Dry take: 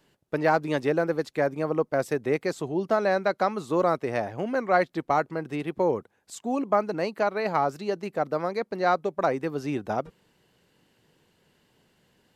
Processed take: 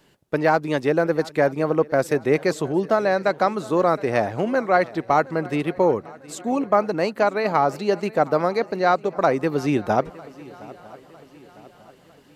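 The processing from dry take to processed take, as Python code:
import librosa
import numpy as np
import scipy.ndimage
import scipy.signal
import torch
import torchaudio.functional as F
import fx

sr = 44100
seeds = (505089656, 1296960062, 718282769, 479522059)

y = fx.rider(x, sr, range_db=3, speed_s=0.5)
y = fx.echo_swing(y, sr, ms=953, ratio=3, feedback_pct=45, wet_db=-21.0)
y = y * librosa.db_to_amplitude(5.5)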